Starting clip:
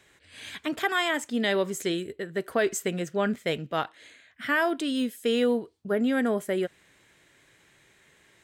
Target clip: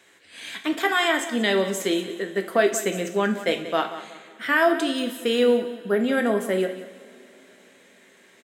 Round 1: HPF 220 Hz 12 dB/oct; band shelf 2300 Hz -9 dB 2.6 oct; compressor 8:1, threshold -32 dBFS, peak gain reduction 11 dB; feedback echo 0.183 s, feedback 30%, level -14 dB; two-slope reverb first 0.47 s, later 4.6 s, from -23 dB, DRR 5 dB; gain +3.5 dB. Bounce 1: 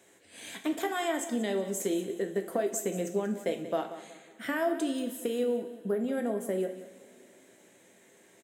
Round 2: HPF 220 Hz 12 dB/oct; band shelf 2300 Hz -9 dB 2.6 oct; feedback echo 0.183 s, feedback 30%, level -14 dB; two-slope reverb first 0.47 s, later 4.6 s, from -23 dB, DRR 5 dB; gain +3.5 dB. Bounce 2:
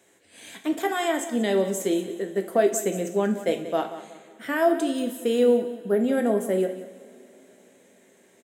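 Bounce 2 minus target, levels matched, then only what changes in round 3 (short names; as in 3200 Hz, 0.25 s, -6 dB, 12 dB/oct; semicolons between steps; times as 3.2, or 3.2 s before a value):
2000 Hz band -7.5 dB
remove: band shelf 2300 Hz -9 dB 2.6 oct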